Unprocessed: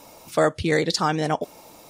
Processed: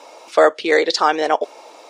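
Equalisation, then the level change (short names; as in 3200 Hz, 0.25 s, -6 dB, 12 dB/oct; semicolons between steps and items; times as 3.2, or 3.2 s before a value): HPF 380 Hz 24 dB/oct; air absorption 94 m; +8.0 dB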